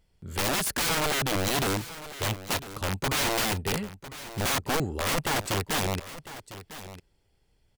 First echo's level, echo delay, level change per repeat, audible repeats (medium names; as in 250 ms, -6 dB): -14.5 dB, 1002 ms, no regular repeats, 1